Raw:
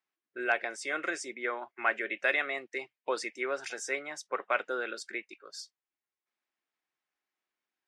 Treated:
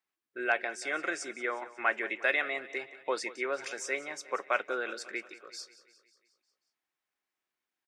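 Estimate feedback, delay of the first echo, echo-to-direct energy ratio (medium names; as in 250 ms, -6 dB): 59%, 180 ms, -15.0 dB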